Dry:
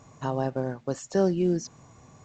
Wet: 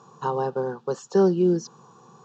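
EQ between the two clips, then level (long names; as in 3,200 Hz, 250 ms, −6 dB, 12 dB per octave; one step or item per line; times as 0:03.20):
band-pass filter 220–4,200 Hz
phaser with its sweep stopped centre 420 Hz, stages 8
+7.5 dB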